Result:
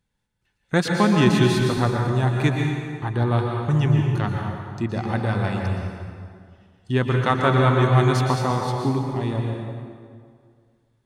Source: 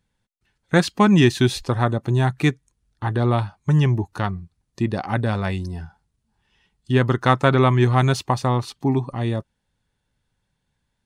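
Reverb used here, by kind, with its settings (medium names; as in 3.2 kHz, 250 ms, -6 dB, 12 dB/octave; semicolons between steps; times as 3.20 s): plate-style reverb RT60 2.1 s, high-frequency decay 0.7×, pre-delay 105 ms, DRR 0.5 dB; trim -3.5 dB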